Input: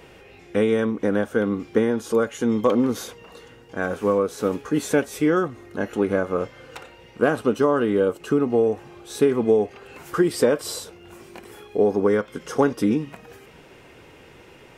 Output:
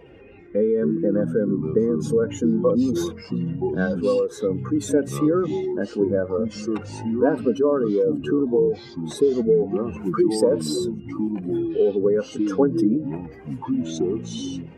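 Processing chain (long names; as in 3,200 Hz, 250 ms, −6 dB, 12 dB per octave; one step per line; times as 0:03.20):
expanding power law on the bin magnitudes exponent 1.9
delay with pitch and tempo change per echo 89 ms, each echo −5 semitones, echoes 3, each echo −6 dB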